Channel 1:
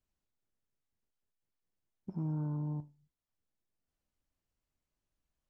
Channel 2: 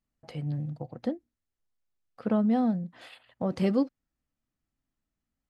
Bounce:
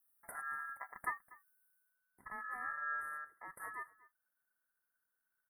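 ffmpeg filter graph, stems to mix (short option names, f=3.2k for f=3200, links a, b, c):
-filter_complex "[0:a]adelay=200,volume=-2dB,asplit=2[a][b];[b]volume=-3.5dB[c];[1:a]crystalizer=i=8:c=0,highpass=150,highshelf=f=4.6k:g=8,volume=-5.5dB,afade=t=out:st=1.66:d=0.33:silence=0.237137,asplit=3[d][e][f];[e]volume=-21dB[g];[f]apad=whole_len=251321[h];[a][h]sidechaincompress=threshold=-56dB:ratio=8:attack=16:release=165[i];[c][g]amix=inputs=2:normalize=0,aecho=0:1:242:1[j];[i][d][j]amix=inputs=3:normalize=0,aeval=exprs='val(0)*sin(2*PI*1500*n/s)':c=same,asuperstop=centerf=4300:order=20:qfactor=0.63"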